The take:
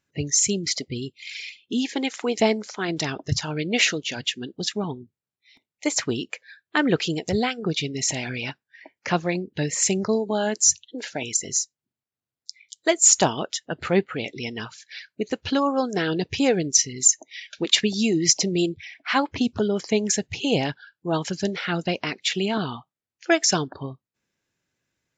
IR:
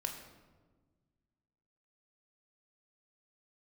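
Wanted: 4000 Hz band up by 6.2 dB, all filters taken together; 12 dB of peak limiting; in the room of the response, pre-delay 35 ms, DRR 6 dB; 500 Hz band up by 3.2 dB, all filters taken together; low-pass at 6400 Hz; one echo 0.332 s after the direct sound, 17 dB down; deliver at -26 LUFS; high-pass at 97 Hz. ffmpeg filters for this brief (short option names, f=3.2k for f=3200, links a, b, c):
-filter_complex "[0:a]highpass=97,lowpass=6.4k,equalizer=f=500:t=o:g=4,equalizer=f=4k:t=o:g=9,alimiter=limit=-9dB:level=0:latency=1,aecho=1:1:332:0.141,asplit=2[a][b];[1:a]atrim=start_sample=2205,adelay=35[c];[b][c]afir=irnorm=-1:irlink=0,volume=-6.5dB[d];[a][d]amix=inputs=2:normalize=0,volume=-4dB"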